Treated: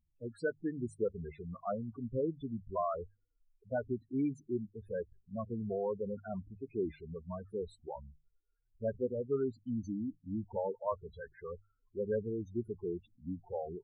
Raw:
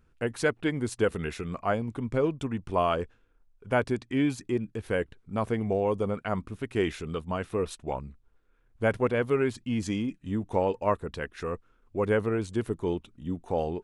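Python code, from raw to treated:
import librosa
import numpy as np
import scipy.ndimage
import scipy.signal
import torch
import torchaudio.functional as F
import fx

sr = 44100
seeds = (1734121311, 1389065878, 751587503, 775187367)

y = fx.spec_topn(x, sr, count=8)
y = fx.noise_reduce_blind(y, sr, reduce_db=7)
y = fx.hum_notches(y, sr, base_hz=50, count=3)
y = y * librosa.db_to_amplitude(-7.0)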